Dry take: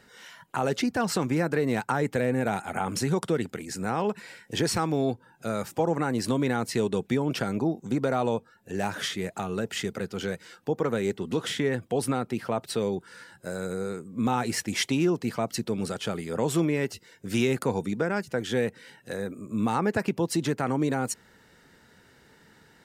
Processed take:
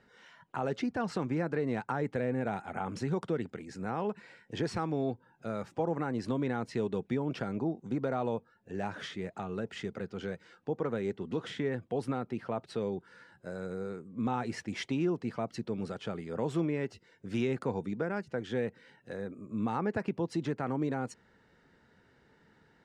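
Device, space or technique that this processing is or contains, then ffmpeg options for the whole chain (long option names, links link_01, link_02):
through cloth: -af "lowpass=7000,highshelf=frequency=3300:gain=-11,volume=-6dB"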